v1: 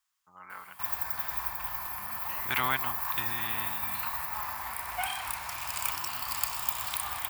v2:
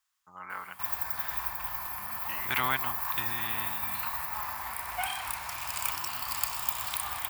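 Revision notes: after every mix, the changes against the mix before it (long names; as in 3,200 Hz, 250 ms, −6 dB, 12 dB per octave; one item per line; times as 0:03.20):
first voice +5.5 dB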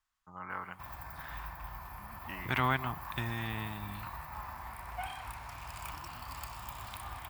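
background −6.5 dB
master: add spectral tilt −3 dB per octave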